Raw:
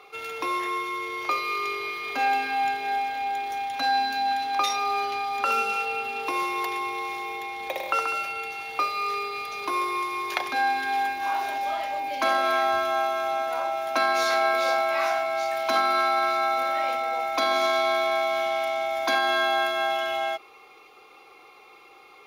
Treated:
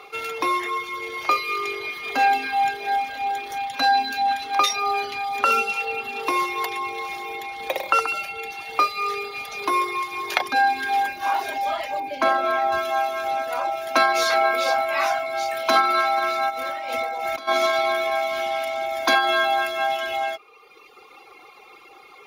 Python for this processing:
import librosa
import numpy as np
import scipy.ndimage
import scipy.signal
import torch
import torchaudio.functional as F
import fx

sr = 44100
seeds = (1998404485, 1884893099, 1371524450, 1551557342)

y = fx.dereverb_blind(x, sr, rt60_s=1.2)
y = fx.high_shelf(y, sr, hz=2400.0, db=-10.0, at=(12.0, 12.72))
y = fx.over_compress(y, sr, threshold_db=-36.0, ratio=-1.0, at=(16.49, 17.47), fade=0.02)
y = y * librosa.db_to_amplitude(6.5)